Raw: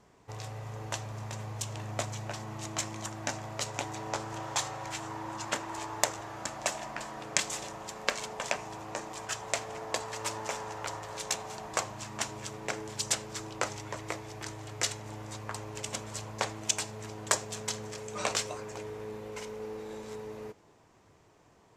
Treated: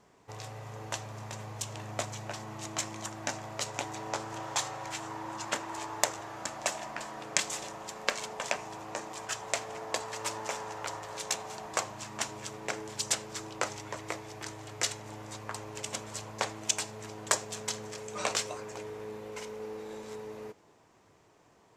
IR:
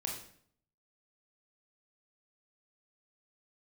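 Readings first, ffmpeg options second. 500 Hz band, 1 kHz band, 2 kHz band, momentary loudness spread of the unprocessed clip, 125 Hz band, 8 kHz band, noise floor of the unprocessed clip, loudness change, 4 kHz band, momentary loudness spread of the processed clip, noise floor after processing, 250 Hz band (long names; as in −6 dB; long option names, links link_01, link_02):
−0.5 dB, 0.0 dB, 0.0 dB, 10 LU, −4.0 dB, 0.0 dB, −62 dBFS, 0.0 dB, 0.0 dB, 11 LU, −63 dBFS, −1.0 dB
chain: -af "lowshelf=frequency=110:gain=-8"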